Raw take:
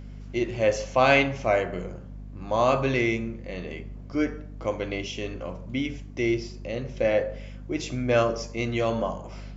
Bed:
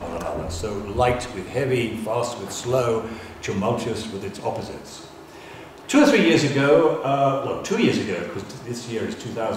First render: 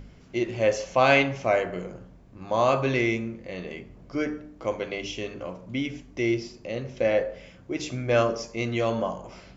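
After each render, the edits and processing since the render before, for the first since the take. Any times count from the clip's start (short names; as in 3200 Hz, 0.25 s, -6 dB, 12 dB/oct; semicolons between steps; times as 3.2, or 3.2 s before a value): de-hum 50 Hz, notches 6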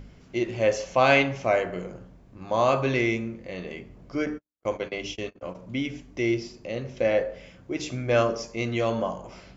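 4.26–5.55 gate -37 dBFS, range -55 dB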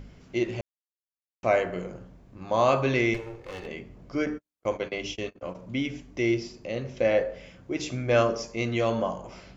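0.61–1.43 mute; 3.14–3.67 minimum comb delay 2.3 ms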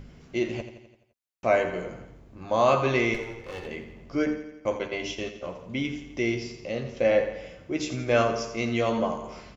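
doubler 13 ms -9 dB; feedback echo 85 ms, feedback 56%, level -11 dB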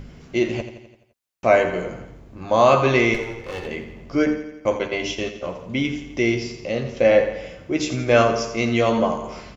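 gain +6.5 dB; limiter -3 dBFS, peak gain reduction 1.5 dB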